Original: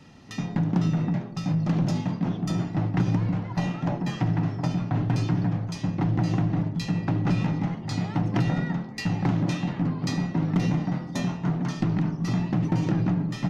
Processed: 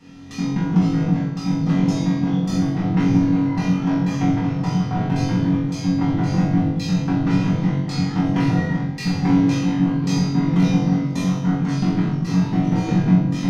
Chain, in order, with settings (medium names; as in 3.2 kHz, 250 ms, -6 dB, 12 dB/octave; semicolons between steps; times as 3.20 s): band-stop 590 Hz, Q 12; flutter echo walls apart 3.7 m, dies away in 0.64 s; reverberation RT60 0.55 s, pre-delay 4 ms, DRR -3.5 dB; trim -3 dB